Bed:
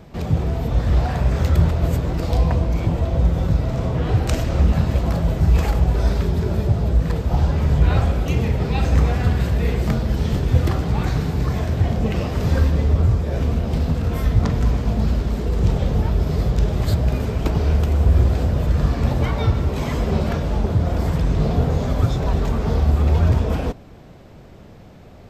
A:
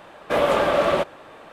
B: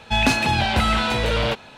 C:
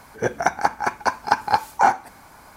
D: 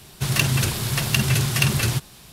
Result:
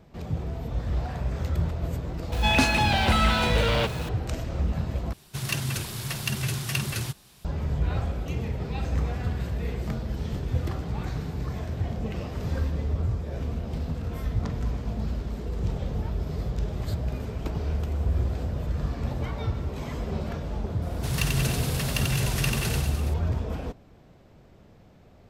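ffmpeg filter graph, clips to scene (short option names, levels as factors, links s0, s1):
-filter_complex "[4:a]asplit=2[s0][s1];[0:a]volume=0.299[s2];[2:a]aeval=exprs='val(0)+0.5*0.0237*sgn(val(0))':c=same[s3];[s1]aecho=1:1:90|189|297.9|417.7|549.5:0.631|0.398|0.251|0.158|0.1[s4];[s2]asplit=2[s5][s6];[s5]atrim=end=5.134[s7];[s0]atrim=end=2.32,asetpts=PTS-STARTPTS,volume=0.376[s8];[s6]atrim=start=7.446[s9];[s3]atrim=end=1.77,asetpts=PTS-STARTPTS,volume=0.668,afade=t=in:d=0.004:c=hsin,afade=t=out:st=1.766:d=0.004:c=hsin,adelay=2320[s10];[s4]atrim=end=2.32,asetpts=PTS-STARTPTS,volume=0.355,afade=t=in:d=0.004:c=hsin,afade=t=out:st=2.316:d=0.004:c=hsin,adelay=20820[s11];[s7][s8]acrossfade=d=0.004:c1=hsin:c2=hsin[s12];[s12][s9]acrossfade=d=0.004:c1=hsin:c2=hsin[s13];[s13][s10][s11]amix=inputs=3:normalize=0"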